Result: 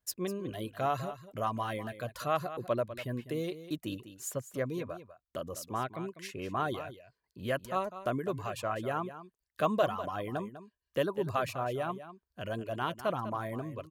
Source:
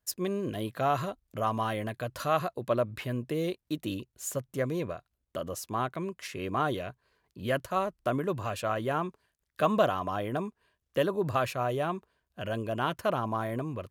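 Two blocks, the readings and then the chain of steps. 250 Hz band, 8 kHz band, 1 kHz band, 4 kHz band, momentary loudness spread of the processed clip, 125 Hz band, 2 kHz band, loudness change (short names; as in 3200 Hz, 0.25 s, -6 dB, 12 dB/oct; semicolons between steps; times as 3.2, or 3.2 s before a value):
-4.0 dB, -3.0 dB, -3.5 dB, -3.5 dB, 10 LU, -4.5 dB, -3.5 dB, -3.5 dB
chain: reverb removal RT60 0.76 s; on a send: echo 0.199 s -13 dB; on the sum: gain -3 dB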